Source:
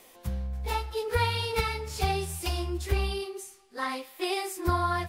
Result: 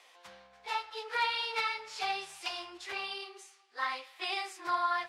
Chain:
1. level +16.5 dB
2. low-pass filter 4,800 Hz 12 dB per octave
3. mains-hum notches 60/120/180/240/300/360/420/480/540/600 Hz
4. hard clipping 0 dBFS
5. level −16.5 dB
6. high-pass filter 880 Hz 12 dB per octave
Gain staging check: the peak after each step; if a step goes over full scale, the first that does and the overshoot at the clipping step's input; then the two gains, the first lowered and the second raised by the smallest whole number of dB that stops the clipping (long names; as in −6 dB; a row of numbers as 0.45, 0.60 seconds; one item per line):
+5.0, +5.0, +4.0, 0.0, −16.5, −18.5 dBFS
step 1, 4.0 dB
step 1 +12.5 dB, step 5 −12.5 dB